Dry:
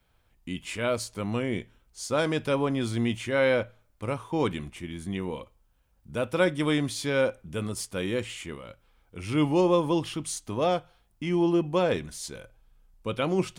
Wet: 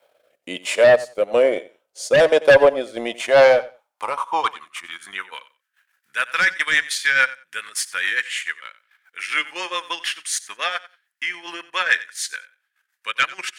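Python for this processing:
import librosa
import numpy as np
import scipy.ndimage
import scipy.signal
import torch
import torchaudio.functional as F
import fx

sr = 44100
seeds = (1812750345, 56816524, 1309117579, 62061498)

y = fx.filter_sweep_highpass(x, sr, from_hz=570.0, to_hz=1700.0, start_s=2.95, end_s=5.62, q=5.5)
y = fx.cheby_harmonics(y, sr, harmonics=(5,), levels_db=(-6,), full_scale_db=-5.0)
y = fx.rotary_switch(y, sr, hz=1.1, then_hz=7.0, switch_at_s=3.36)
y = fx.transient(y, sr, attack_db=0, sustain_db=-12)
y = fx.echo_feedback(y, sr, ms=91, feedback_pct=17, wet_db=-18)
y = F.gain(torch.from_numpy(y), 1.0).numpy()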